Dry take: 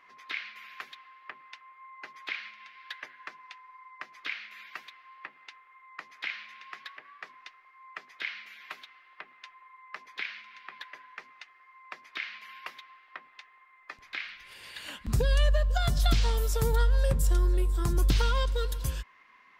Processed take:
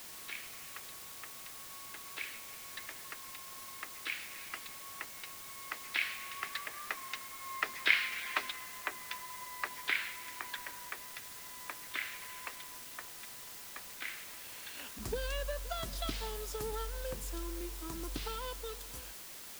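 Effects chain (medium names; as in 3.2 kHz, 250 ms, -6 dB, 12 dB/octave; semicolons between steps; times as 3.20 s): Doppler pass-by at 8.08 s, 16 m/s, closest 18 m; resonant low shelf 190 Hz -9 dB, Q 1.5; in parallel at -5 dB: word length cut 8-bit, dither triangular; on the sum: trim +4.5 dB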